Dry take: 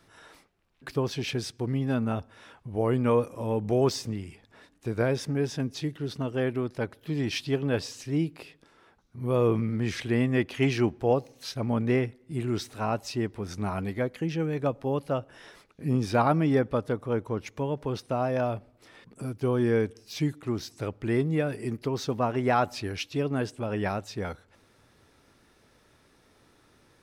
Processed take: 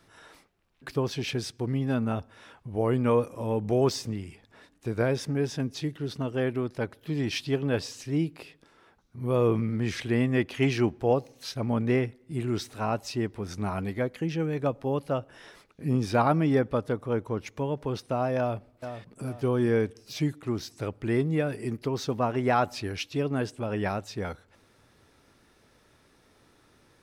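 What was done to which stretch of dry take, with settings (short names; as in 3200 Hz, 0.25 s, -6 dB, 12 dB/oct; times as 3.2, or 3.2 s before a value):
18.38–19.24 echo throw 0.44 s, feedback 40%, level -9.5 dB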